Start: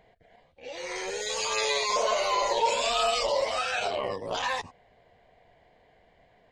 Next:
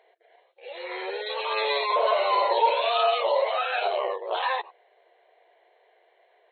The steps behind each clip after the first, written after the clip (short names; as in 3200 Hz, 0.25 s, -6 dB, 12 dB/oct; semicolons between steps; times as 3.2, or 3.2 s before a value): FFT band-pass 340–4300 Hz; dynamic EQ 790 Hz, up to +5 dB, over -39 dBFS, Q 0.94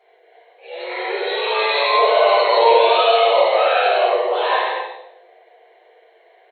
bouncing-ball echo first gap 0.1 s, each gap 0.7×, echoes 5; reverb RT60 0.90 s, pre-delay 3 ms, DRR -9 dB; gain -4.5 dB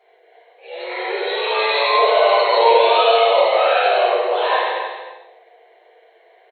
echo 0.306 s -12.5 dB